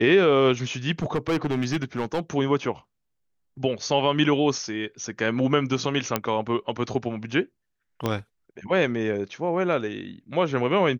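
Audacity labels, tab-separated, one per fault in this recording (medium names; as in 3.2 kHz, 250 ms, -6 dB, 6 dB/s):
1.020000	2.200000	clipped -20 dBFS
6.160000	6.160000	pop -7 dBFS
8.060000	8.060000	pop -11 dBFS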